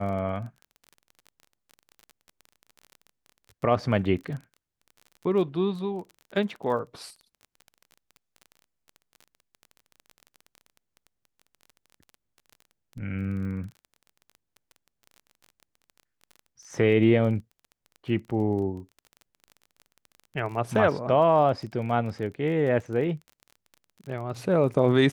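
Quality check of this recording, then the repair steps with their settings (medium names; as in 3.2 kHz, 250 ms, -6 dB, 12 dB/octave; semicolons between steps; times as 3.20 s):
crackle 23 per s -36 dBFS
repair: de-click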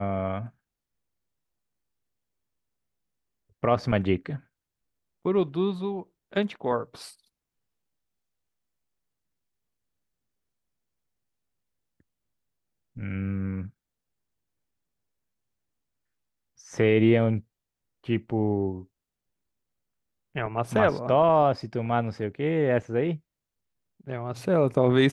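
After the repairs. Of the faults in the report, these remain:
nothing left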